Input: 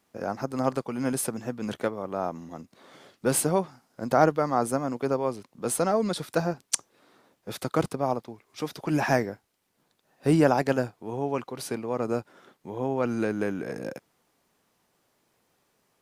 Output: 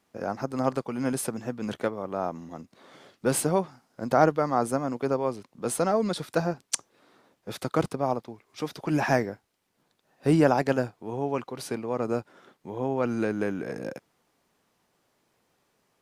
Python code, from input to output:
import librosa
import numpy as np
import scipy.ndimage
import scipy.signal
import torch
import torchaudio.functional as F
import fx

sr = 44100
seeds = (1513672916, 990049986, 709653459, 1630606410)

y = fx.high_shelf(x, sr, hz=9200.0, db=-5.5)